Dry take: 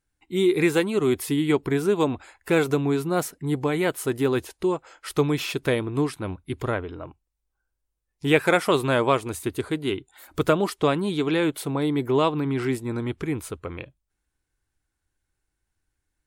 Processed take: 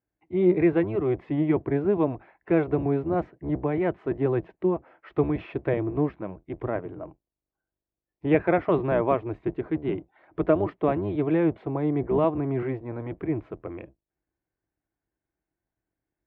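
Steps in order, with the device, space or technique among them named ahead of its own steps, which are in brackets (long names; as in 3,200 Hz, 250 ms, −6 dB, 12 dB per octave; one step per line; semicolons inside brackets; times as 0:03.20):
sub-octave bass pedal (sub-octave generator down 1 octave, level +3 dB; loudspeaker in its box 78–2,100 Hz, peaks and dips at 82 Hz −10 dB, 140 Hz −4 dB, 220 Hz −5 dB, 330 Hz +7 dB, 660 Hz +8 dB, 1,400 Hz −5 dB)
level −5 dB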